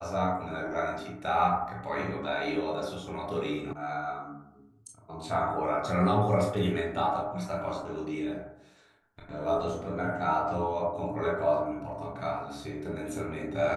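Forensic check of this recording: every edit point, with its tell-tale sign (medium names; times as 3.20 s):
3.73 s: sound stops dead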